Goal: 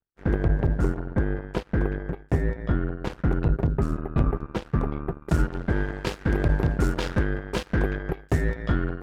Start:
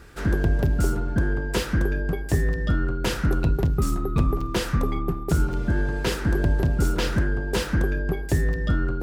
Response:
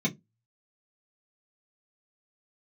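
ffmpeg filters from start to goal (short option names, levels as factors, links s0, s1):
-af "asetnsamples=n=441:p=0,asendcmd='5.22 lowpass f 3100',lowpass=f=1000:p=1,aeval=exprs='0.316*(cos(1*acos(clip(val(0)/0.316,-1,1)))-cos(1*PI/2))+0.0224*(cos(2*acos(clip(val(0)/0.316,-1,1)))-cos(2*PI/2))+0.0224*(cos(3*acos(clip(val(0)/0.316,-1,1)))-cos(3*PI/2))+0.00224*(cos(4*acos(clip(val(0)/0.316,-1,1)))-cos(4*PI/2))+0.0355*(cos(7*acos(clip(val(0)/0.316,-1,1)))-cos(7*PI/2))':c=same"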